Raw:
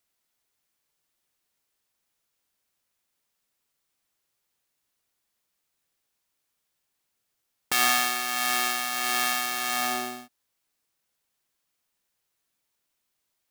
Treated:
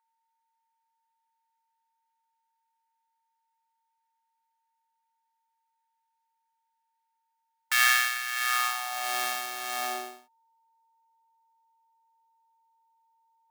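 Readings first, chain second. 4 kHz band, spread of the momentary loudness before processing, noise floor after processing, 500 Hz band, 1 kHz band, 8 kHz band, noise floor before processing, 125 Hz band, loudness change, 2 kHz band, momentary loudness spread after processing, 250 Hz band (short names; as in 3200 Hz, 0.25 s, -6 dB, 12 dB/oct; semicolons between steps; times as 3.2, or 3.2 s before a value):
-3.0 dB, 8 LU, -79 dBFS, -5.0 dB, -2.5 dB, -4.0 dB, -79 dBFS, n/a, -1.5 dB, +1.0 dB, 12 LU, under -10 dB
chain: whine 910 Hz -55 dBFS; high-pass sweep 1600 Hz -> 450 Hz, 8.4–9.24; upward expander 1.5:1, over -43 dBFS; gain -2 dB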